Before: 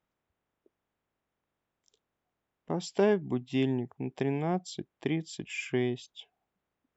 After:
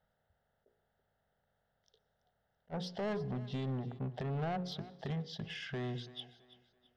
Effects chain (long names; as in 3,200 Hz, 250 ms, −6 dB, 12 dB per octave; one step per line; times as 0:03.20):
high-shelf EQ 2,500 Hz −10 dB
mains-hum notches 60/120/180/240/300/360/420/480/540 Hz
in parallel at −0.5 dB: downward compressor, threshold −37 dBFS, peak gain reduction 15.5 dB
on the sum: brickwall limiter −21 dBFS, peak gain reduction 8 dB
phaser with its sweep stopped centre 1,600 Hz, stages 8
soft clipping −36.5 dBFS, distortion −11 dB
feedback echo with a high-pass in the loop 332 ms, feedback 36%, high-pass 150 Hz, level −17 dB
on a send at −21 dB: convolution reverb RT60 0.75 s, pre-delay 113 ms
on the sum: level that may rise only so fast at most 520 dB per second
level +3.5 dB